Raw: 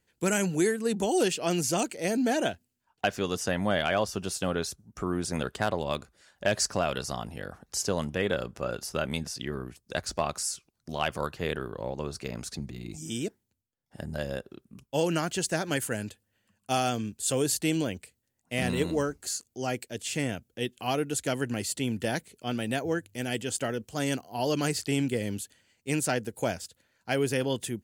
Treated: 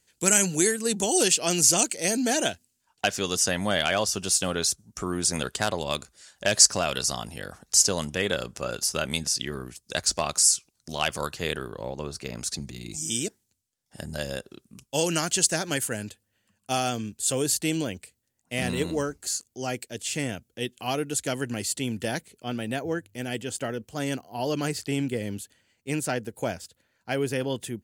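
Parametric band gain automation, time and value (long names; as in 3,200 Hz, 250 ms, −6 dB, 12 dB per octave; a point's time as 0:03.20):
parametric band 7,500 Hz 2.3 octaves
0:11.43 +13.5 dB
0:12.16 +3.5 dB
0:12.63 +13 dB
0:15.30 +13 dB
0:15.96 +4 dB
0:22.04 +4 dB
0:22.54 −2 dB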